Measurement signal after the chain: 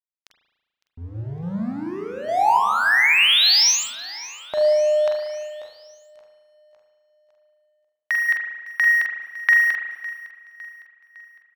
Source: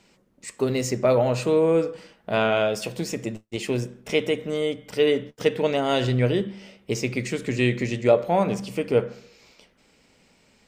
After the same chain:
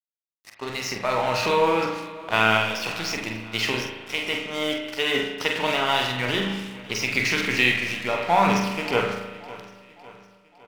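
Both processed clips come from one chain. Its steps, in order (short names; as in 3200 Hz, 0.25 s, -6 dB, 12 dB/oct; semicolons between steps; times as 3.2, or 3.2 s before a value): EQ curve 570 Hz 0 dB, 900 Hz +14 dB, 5900 Hz +14 dB, 9700 Hz -27 dB; compressor 3:1, threshold -13 dBFS; transient shaper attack -1 dB, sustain +6 dB; random-step tremolo; crossover distortion -33 dBFS; doubler 46 ms -6.5 dB; on a send: feedback echo 0.557 s, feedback 50%, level -19 dB; on the sum: spring tank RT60 1.2 s, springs 36 ms, chirp 65 ms, DRR 3.5 dB; gain -2 dB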